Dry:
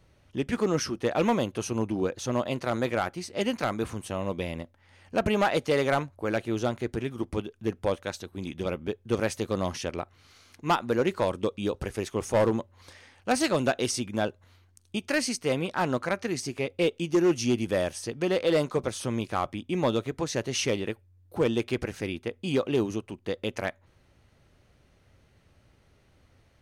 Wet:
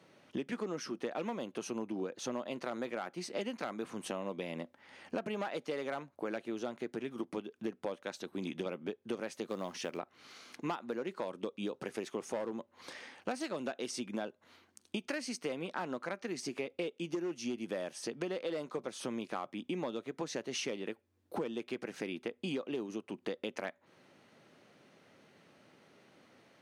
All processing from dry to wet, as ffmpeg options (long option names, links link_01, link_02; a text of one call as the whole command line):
ffmpeg -i in.wav -filter_complex "[0:a]asettb=1/sr,asplit=3[link_01][link_02][link_03];[link_01]atrim=end=9.464[link_04];[link_02]atrim=start=9.46:end=9.98,asetpts=PTS-STARTPTS,afade=type=in:duration=0.004:curve=qsin,afade=type=out:start_time=0.516:duration=0.004:curve=qsin,asubboost=boost=7.5:cutoff=120,acrusher=bits=6:mode=log:mix=0:aa=0.000001[link_05];[link_03]atrim=start=9.976[link_06];[link_04][link_05]acrossfade=duration=0.004:curve1=hsin:curve2=qsin[link_07];[link_07][link_06]acrossfade=duration=0.004:curve1=qsin:curve2=hsin,highpass=frequency=180:width=0.5412,highpass=frequency=180:width=1.3066,highshelf=frequency=7600:gain=-8.5,acompressor=threshold=-39dB:ratio=8,volume=4dB" out.wav